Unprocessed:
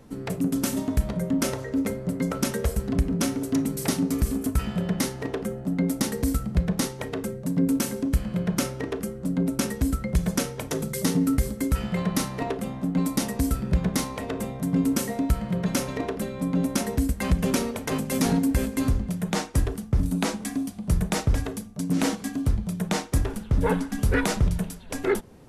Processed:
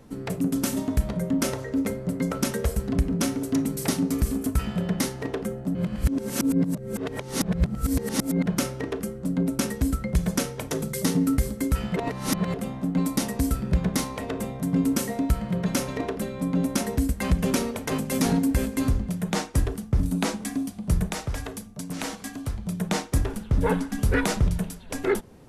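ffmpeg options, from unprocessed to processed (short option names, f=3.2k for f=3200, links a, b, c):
-filter_complex "[0:a]asettb=1/sr,asplit=3[a][b][c];[a]atrim=end=21.074[d];[b]atrim=start=21.07:end=22.66,asetpts=PTS-STARTPTS,afade=t=in:d=0.004:c=qsin,afade=t=out:st=1.586:d=0.004:c=qsin,acrossover=split=100|540[e][f][g];[e]acompressor=threshold=-29dB:ratio=4[h];[f]acompressor=threshold=-37dB:ratio=4[i];[g]acompressor=threshold=-30dB:ratio=4[j];[h][i][j]amix=inputs=3:normalize=0[k];[c]atrim=start=22.656[l];[d][k]acrossfade=d=0.004:c1=hsin:c2=qsin[m];[m][l]acrossfade=d=0.004:c1=qsin:c2=hsin,asplit=5[n][o][p][q][r];[n]atrim=end=5.752[s];[o]atrim=start=5.748:end=8.462,asetpts=PTS-STARTPTS,areverse[t];[p]atrim=start=8.458:end=11.962[u];[q]atrim=start=11.958:end=12.542,asetpts=PTS-STARTPTS,areverse[v];[r]atrim=start=12.538[w];[s][t]acrossfade=d=0.004:c1=hsin:c2=hsin[x];[x][u]acrossfade=d=0.004:c1=hsin:c2=hsin[y];[y][v]acrossfade=d=0.004:c1=hsin:c2=hsin[z];[z][w]acrossfade=d=0.004:c1=hsin:c2=hsin"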